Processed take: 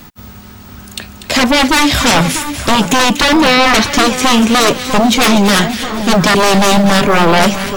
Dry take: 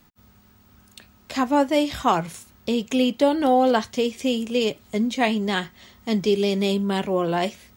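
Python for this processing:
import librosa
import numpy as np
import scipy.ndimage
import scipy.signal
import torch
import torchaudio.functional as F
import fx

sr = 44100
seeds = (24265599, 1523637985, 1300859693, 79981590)

y = fx.fold_sine(x, sr, drive_db=18, ceiling_db=-5.5)
y = fx.echo_split(y, sr, split_hz=1700.0, low_ms=647, high_ms=241, feedback_pct=52, wet_db=-10)
y = y * 10.0 ** (-1.0 / 20.0)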